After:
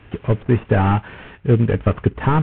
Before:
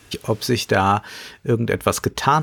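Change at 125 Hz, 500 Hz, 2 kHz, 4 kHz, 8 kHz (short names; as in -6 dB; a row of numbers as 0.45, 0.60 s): +7.5 dB, 0.0 dB, -4.0 dB, under -10 dB, under -40 dB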